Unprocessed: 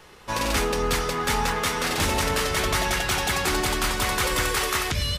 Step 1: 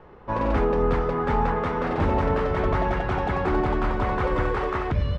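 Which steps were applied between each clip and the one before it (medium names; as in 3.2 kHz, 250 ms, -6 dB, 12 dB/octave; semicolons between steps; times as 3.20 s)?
low-pass 1 kHz 12 dB/octave; trim +4 dB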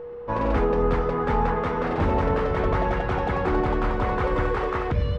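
whistle 480 Hz -34 dBFS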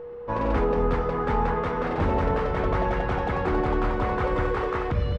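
delay 208 ms -13.5 dB; trim -1.5 dB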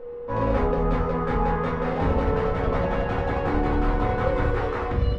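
simulated room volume 130 m³, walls furnished, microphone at 2 m; trim -4 dB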